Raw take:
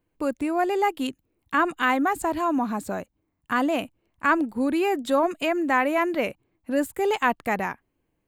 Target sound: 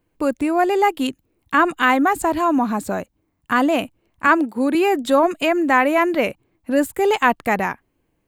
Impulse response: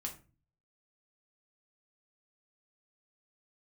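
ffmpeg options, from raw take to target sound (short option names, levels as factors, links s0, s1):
-filter_complex "[0:a]asettb=1/sr,asplit=3[s0][s1][s2];[s0]atrim=end=4.274[s3];[s1]atrim=start=4.27:end=4.75,asetpts=PTS-STARTPTS,afade=t=in:d=0.004:c=qsin,afade=t=out:st=0.476:d=0.004:c=qsin,highpass=220[s4];[s2]atrim=start=4.746[s5];[s3][s4]acrossfade=d=0.004:c1=hsin:c2=qsin[s6];[s6][s5]acrossfade=d=0.004:c1=qsin:c2=hsin,volume=2"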